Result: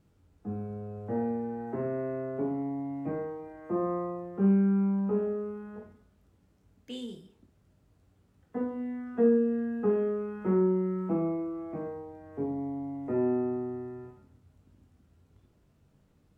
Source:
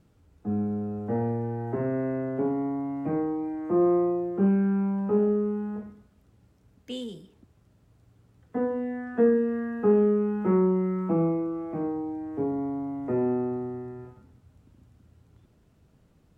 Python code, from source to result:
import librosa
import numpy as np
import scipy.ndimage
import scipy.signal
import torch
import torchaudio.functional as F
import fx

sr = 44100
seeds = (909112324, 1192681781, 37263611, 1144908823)

y = fx.room_early_taps(x, sr, ms=(21, 56), db=(-7.0, -9.5))
y = F.gain(torch.from_numpy(y), -5.0).numpy()